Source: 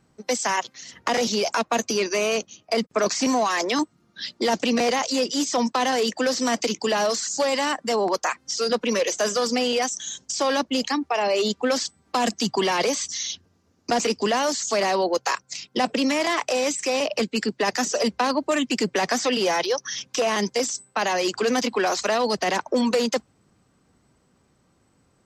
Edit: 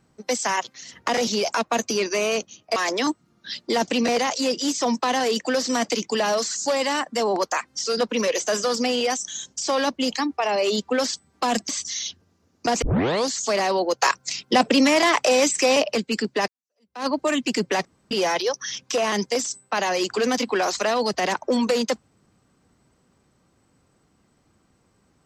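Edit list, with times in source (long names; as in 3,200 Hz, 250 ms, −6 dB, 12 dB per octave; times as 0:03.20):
0:02.76–0:03.48: remove
0:12.41–0:12.93: remove
0:14.06: tape start 0.49 s
0:15.26–0:17.07: clip gain +5 dB
0:17.72–0:18.30: fade in exponential
0:19.09–0:19.35: fill with room tone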